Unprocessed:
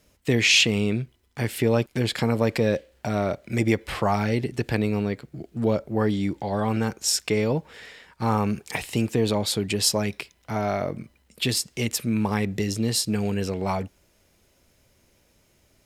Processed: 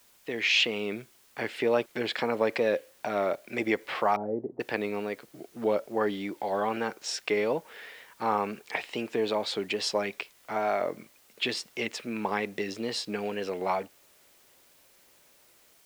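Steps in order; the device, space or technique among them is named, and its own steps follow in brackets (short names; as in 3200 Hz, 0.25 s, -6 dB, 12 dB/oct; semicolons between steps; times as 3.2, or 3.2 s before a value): dictaphone (BPF 400–3400 Hz; AGC gain up to 8.5 dB; wow and flutter; white noise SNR 30 dB); 4.16–4.6 inverse Chebyshev low-pass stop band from 4300 Hz, stop band 80 dB; gain -8.5 dB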